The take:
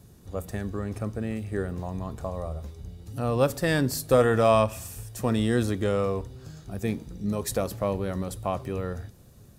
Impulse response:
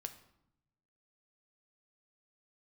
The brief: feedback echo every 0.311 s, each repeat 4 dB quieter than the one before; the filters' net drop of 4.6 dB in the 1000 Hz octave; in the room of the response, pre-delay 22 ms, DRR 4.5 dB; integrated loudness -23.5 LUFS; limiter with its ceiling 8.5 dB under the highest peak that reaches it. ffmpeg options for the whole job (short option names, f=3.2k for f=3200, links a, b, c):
-filter_complex "[0:a]equalizer=f=1k:t=o:g=-6.5,alimiter=limit=-18dB:level=0:latency=1,aecho=1:1:311|622|933|1244|1555|1866|2177|2488|2799:0.631|0.398|0.25|0.158|0.0994|0.0626|0.0394|0.0249|0.0157,asplit=2[a][b];[1:a]atrim=start_sample=2205,adelay=22[c];[b][c]afir=irnorm=-1:irlink=0,volume=-1.5dB[d];[a][d]amix=inputs=2:normalize=0,volume=4.5dB"